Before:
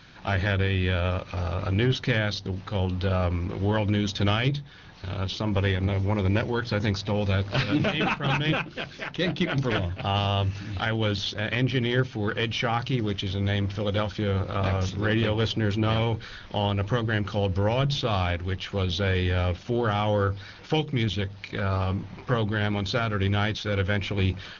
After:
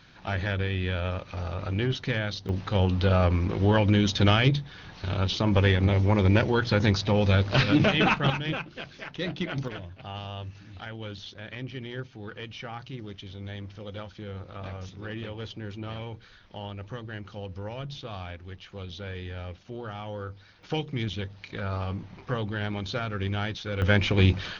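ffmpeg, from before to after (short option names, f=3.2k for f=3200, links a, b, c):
-af "asetnsamples=n=441:p=0,asendcmd='2.49 volume volume 3dB;8.3 volume volume -5.5dB;9.68 volume volume -12.5dB;20.63 volume volume -5dB;23.82 volume volume 4.5dB',volume=-4dB"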